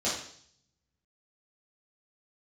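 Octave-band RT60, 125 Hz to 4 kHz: 1.4, 0.65, 0.60, 0.55, 0.60, 0.75 s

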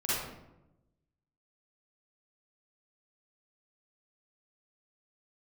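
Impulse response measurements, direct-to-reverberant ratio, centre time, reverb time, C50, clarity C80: -11.0 dB, 91 ms, 0.90 s, -5.5 dB, 1.5 dB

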